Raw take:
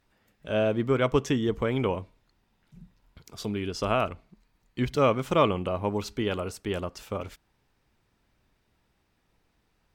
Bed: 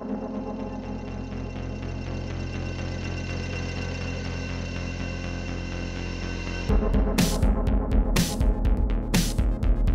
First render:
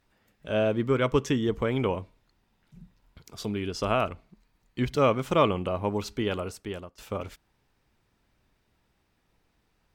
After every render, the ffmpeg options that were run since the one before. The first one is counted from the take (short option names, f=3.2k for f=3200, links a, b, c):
-filter_complex "[0:a]asettb=1/sr,asplit=3[a][b][c];[a]atrim=end=0.724[d];[b]atrim=start=0.72:end=1.38,asetpts=PTS-STARTPTS,afade=t=in:d=0.004:c=qsin,afade=t=out:st=0.656:d=0.004:c=qsin,bandreject=f=710:w=5[e];[c]atrim=start=1.376[f];[d][e]acrossfade=d=0.004:c1=hsin:c2=qsin[g];[g][f]acrossfade=d=0.004:c1=qsin:c2=hsin,asplit=2[h][i];[h]atrim=end=6.98,asetpts=PTS-STARTPTS,afade=t=out:st=6.21:d=0.77:c=qsin:silence=0.0891251[j];[i]atrim=start=6.98,asetpts=PTS-STARTPTS,afade=t=in:d=0.004:c=hsin:silence=0.0891251[k];[j][k]concat=n=2:v=0:a=1"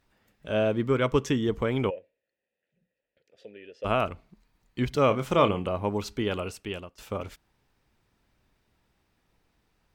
-filter_complex "[0:a]asplit=3[a][b][c];[a]afade=t=out:st=1.89:d=0.02[d];[b]asplit=3[e][f][g];[e]bandpass=f=530:t=q:w=8,volume=0dB[h];[f]bandpass=f=1.84k:t=q:w=8,volume=-6dB[i];[g]bandpass=f=2.48k:t=q:w=8,volume=-9dB[j];[h][i][j]amix=inputs=3:normalize=0,afade=t=in:st=1.89:d=0.02,afade=t=out:st=3.84:d=0.02[k];[c]afade=t=in:st=3.84:d=0.02[l];[d][k][l]amix=inputs=3:normalize=0,asettb=1/sr,asplit=3[m][n][o];[m]atrim=end=5.074[p];[n]atrim=start=5.07:end=5.69,asetpts=PTS-STARTPTS,afade=t=in:d=0.004:c=qsin,afade=t=out:st=0.616:d=0.004:c=qsin,asplit=2[q][r];[r]adelay=29,volume=-10dB[s];[q][s]amix=inputs=2:normalize=0,atrim=end_sample=27342[t];[o]atrim=start=5.686[u];[p][t]acrossfade=d=0.004:c1=hsin:c2=qsin[v];[v][u]acrossfade=d=0.004:c1=qsin:c2=hsin,asettb=1/sr,asplit=3[w][x][y];[w]atrim=end=6.364[z];[x]atrim=start=6.36:end=6.95,asetpts=PTS-STARTPTS,afade=t=in:d=0.004:c=qsin,afade=t=out:st=0.586:d=0.004:c=qsin,equalizer=f=2.7k:t=o:w=0.43:g=9[aa];[y]atrim=start=6.946[ab];[z][aa]acrossfade=d=0.004:c1=hsin:c2=qsin[ac];[ac][ab]acrossfade=d=0.004:c1=qsin:c2=hsin"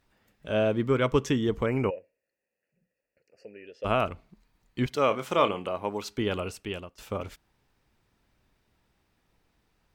-filter_complex "[0:a]asettb=1/sr,asplit=3[a][b][c];[a]atrim=end=1.664[d];[b]atrim=start=1.66:end=3.67,asetpts=PTS-STARTPTS,afade=t=in:d=0.004:c=qsin,afade=t=out:st=2.006:d=0.004:c=qsin,asuperstop=centerf=3500:order=20:qfactor=2.8[e];[c]atrim=start=3.666[f];[d][e]acrossfade=d=0.004:c1=hsin:c2=qsin[g];[g][f]acrossfade=d=0.004:c1=qsin:c2=hsin,asettb=1/sr,asplit=3[h][i][j];[h]atrim=end=4.864[k];[i]atrim=start=4.86:end=6.18,asetpts=PTS-STARTPTS,afade=t=in:d=0.004:c=qsin,afade=t=out:st=1.316:d=0.004:c=qsin,highpass=f=410:p=1[l];[j]atrim=start=6.176[m];[k][l]acrossfade=d=0.004:c1=hsin:c2=qsin[n];[n][m]acrossfade=d=0.004:c1=qsin:c2=hsin"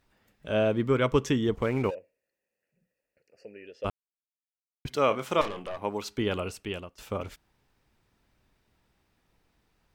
-filter_complex "[0:a]asettb=1/sr,asplit=3[a][b][c];[a]atrim=end=1.554[d];[b]atrim=start=1.55:end=1.95,asetpts=PTS-STARTPTS,afade=t=in:d=0.004:c=qsin,afade=t=out:st=0.396:d=0.004:c=qsin,aeval=exprs='sgn(val(0))*max(abs(val(0))-0.00501,0)':c=same[e];[c]atrim=start=1.946[f];[d][e]acrossfade=d=0.004:c1=hsin:c2=qsin[g];[g][f]acrossfade=d=0.004:c1=qsin:c2=hsin,asettb=1/sr,asplit=3[h][i][j];[h]atrim=end=5.414[k];[i]atrim=start=5.41:end=5.82,asetpts=PTS-STARTPTS,afade=t=in:d=0.004:c=qsin,afade=t=out:st=0.406:d=0.004:c=qsin,aeval=exprs='(tanh(31.6*val(0)+0.55)-tanh(0.55))/31.6':c=same[l];[j]atrim=start=5.816[m];[k][l]acrossfade=d=0.004:c1=hsin:c2=qsin[n];[n][m]acrossfade=d=0.004:c1=qsin:c2=hsin,asplit=3[o][p][q];[o]atrim=end=3.9,asetpts=PTS-STARTPTS,afade=t=out:st=3.896:d=0.004:c=hsin[r];[p]atrim=start=3.9:end=4.85,asetpts=PTS-STARTPTS,volume=0[s];[q]atrim=start=4.85,asetpts=PTS-STARTPTS,afade=t=in:d=0.004:c=hsin[t];[r][s][t]concat=n=3:v=0:a=1"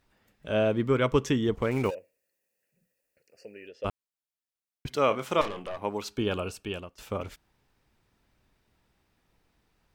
-filter_complex "[0:a]asettb=1/sr,asplit=3[a][b][c];[a]atrim=end=1.714[d];[b]atrim=start=1.71:end=3.69,asetpts=PTS-STARTPTS,afade=t=in:d=0.004:c=qsin,afade=t=out:st=1.976:d=0.004:c=qsin,highshelf=f=5.1k:g=11.5[e];[c]atrim=start=3.686[f];[d][e]acrossfade=d=0.004:c1=hsin:c2=qsin[g];[g][f]acrossfade=d=0.004:c1=qsin:c2=hsin,asettb=1/sr,asplit=3[h][i][j];[h]atrim=end=6.124[k];[i]atrim=start=6.12:end=6.82,asetpts=PTS-STARTPTS,afade=t=in:d=0.004:c=qsin,afade=t=out:st=0.696:d=0.004:c=qsin,asuperstop=centerf=2000:order=8:qfactor=7.2[l];[j]atrim=start=6.816[m];[k][l]acrossfade=d=0.004:c1=hsin:c2=qsin[n];[n][m]acrossfade=d=0.004:c1=qsin:c2=hsin"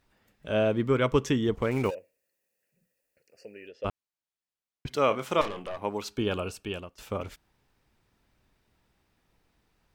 -filter_complex "[0:a]asettb=1/sr,asplit=3[a][b][c];[a]atrim=end=3.724[d];[b]atrim=start=3.72:end=4.91,asetpts=PTS-STARTPTS,afade=t=in:d=0.004:c=qsin,afade=t=out:st=1.186:d=0.004:c=qsin,highshelf=f=9.1k:g=-11[e];[c]atrim=start=4.906[f];[d][e]acrossfade=d=0.004:c1=hsin:c2=qsin[g];[g][f]acrossfade=d=0.004:c1=qsin:c2=hsin"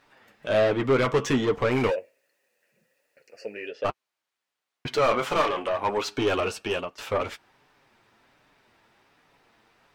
-filter_complex "[0:a]asplit=2[a][b];[b]highpass=f=720:p=1,volume=25dB,asoftclip=type=tanh:threshold=-10dB[c];[a][c]amix=inputs=2:normalize=0,lowpass=f=2.3k:p=1,volume=-6dB,flanger=delay=6.7:depth=2.3:regen=-30:speed=1.3:shape=sinusoidal"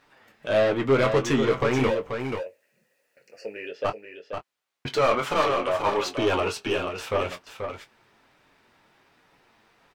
-filter_complex "[0:a]asplit=2[a][b];[b]adelay=22,volume=-10dB[c];[a][c]amix=inputs=2:normalize=0,asplit=2[d][e];[e]aecho=0:1:484:0.447[f];[d][f]amix=inputs=2:normalize=0"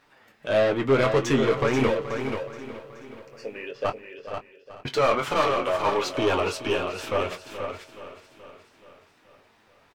-af "aecho=1:1:426|852|1278|1704|2130|2556:0.211|0.118|0.0663|0.0371|0.0208|0.0116"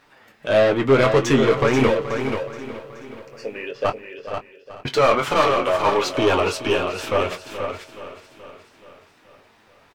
-af "volume=5dB"